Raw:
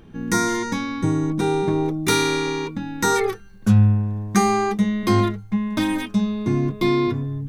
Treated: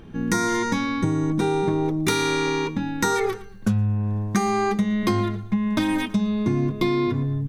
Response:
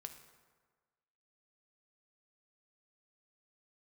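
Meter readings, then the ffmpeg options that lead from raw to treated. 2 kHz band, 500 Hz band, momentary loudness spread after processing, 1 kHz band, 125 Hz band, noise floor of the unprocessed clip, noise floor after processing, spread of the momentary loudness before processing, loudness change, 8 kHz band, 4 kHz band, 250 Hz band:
-1.0 dB, -1.5 dB, 3 LU, -2.0 dB, -3.5 dB, -42 dBFS, -38 dBFS, 6 LU, -2.0 dB, -3.5 dB, -2.5 dB, -1.5 dB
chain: -af "highshelf=f=7800:g=-4,aecho=1:1:113|226:0.0891|0.0267,acompressor=threshold=0.0891:ratio=10,volume=1.41"

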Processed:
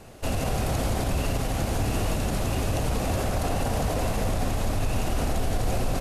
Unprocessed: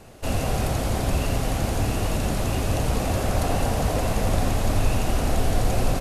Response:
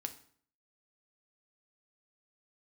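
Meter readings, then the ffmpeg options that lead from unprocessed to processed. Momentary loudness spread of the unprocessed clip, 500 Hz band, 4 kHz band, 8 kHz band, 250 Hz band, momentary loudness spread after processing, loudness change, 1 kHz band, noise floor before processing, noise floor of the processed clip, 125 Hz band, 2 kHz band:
1 LU, -2.5 dB, -2.5 dB, -2.5 dB, -2.5 dB, 1 LU, -2.5 dB, -2.5 dB, -27 dBFS, -29 dBFS, -3.0 dB, -2.5 dB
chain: -af "alimiter=limit=0.141:level=0:latency=1:release=44"

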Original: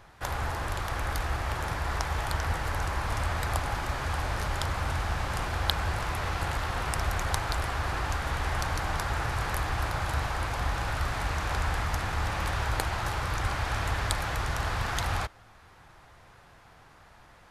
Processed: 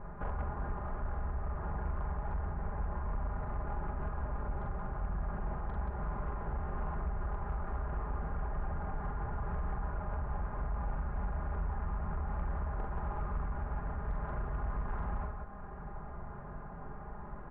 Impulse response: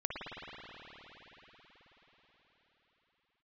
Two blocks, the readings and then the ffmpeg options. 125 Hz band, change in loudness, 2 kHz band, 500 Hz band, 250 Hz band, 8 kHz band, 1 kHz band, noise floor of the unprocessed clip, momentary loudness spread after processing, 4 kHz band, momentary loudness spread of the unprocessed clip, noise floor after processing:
-6.5 dB, -8.5 dB, -17.5 dB, -7.5 dB, -3.5 dB, under -40 dB, -10.0 dB, -55 dBFS, 8 LU, under -35 dB, 2 LU, -44 dBFS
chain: -filter_complex "[0:a]lowpass=f=1400:w=0.5412,lowpass=f=1400:w=1.3066,lowshelf=f=390:g=10,acompressor=threshold=0.0141:ratio=6,aecho=1:1:4.9:0.72,aecho=1:1:43.73|177.8:0.708|0.631,asplit=2[s0][s1];[1:a]atrim=start_sample=2205,asetrate=74970,aresample=44100,adelay=55[s2];[s1][s2]afir=irnorm=-1:irlink=0,volume=0.224[s3];[s0][s3]amix=inputs=2:normalize=0,aeval=exprs='0.0794*sin(PI/2*1.58*val(0)/0.0794)':c=same,volume=0.447"

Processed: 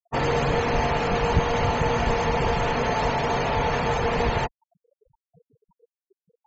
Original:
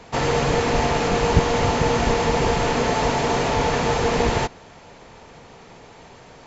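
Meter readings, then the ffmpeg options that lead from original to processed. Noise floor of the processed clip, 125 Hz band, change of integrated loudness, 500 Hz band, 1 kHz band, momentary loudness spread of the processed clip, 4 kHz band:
under -85 dBFS, -2.5 dB, -3.0 dB, -3.5 dB, -2.0 dB, 2 LU, -5.0 dB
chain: -af "adynamicequalizer=threshold=0.0158:dfrequency=310:dqfactor=1.5:tfrequency=310:tqfactor=1.5:attack=5:release=100:ratio=0.375:range=3:mode=cutabove:tftype=bell,afftfilt=real='re*gte(hypot(re,im),0.0398)':imag='im*gte(hypot(re,im),0.0398)':win_size=1024:overlap=0.75,acontrast=75,volume=0.398"

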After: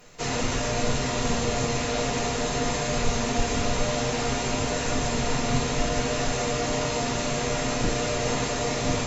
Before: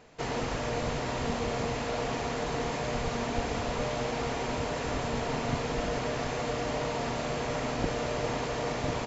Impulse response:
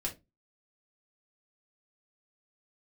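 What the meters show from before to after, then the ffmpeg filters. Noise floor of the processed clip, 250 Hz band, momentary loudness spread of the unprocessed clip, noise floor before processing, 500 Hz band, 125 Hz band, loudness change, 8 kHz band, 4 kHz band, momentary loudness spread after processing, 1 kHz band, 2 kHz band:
-28 dBFS, +6.0 dB, 1 LU, -34 dBFS, +4.0 dB, +6.0 dB, +5.5 dB, no reading, +8.5 dB, 1 LU, +4.0 dB, +5.5 dB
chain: -filter_complex "[0:a]aemphasis=mode=production:type=75fm[s0];[1:a]atrim=start_sample=2205,asetrate=33516,aresample=44100[s1];[s0][s1]afir=irnorm=-1:irlink=0"

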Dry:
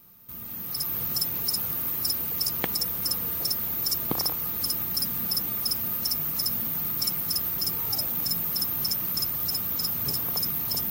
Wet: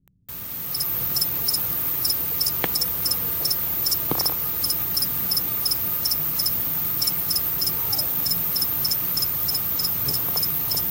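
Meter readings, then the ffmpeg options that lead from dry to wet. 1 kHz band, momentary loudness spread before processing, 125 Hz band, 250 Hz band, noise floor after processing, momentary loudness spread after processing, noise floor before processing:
+4.5 dB, 1 LU, +4.0 dB, +2.0 dB, -31 dBFS, 1 LU, -36 dBFS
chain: -filter_complex "[0:a]equalizer=f=220:w=7.7:g=-14.5,acrossover=split=250[s0][s1];[s1]acrusher=bits=6:mix=0:aa=0.000001[s2];[s0][s2]amix=inputs=2:normalize=0,volume=1.68"

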